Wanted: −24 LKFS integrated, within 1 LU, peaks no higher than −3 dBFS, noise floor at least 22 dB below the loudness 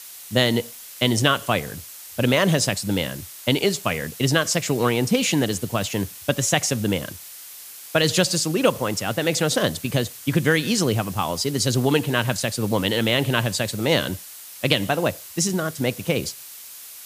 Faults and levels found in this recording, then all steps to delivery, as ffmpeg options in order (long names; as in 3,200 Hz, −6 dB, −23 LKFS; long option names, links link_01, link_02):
background noise floor −40 dBFS; target noise floor −44 dBFS; integrated loudness −22.0 LKFS; sample peak −2.0 dBFS; target loudness −24.0 LKFS
→ -af "afftdn=noise_reduction=6:noise_floor=-40"
-af "volume=-2dB"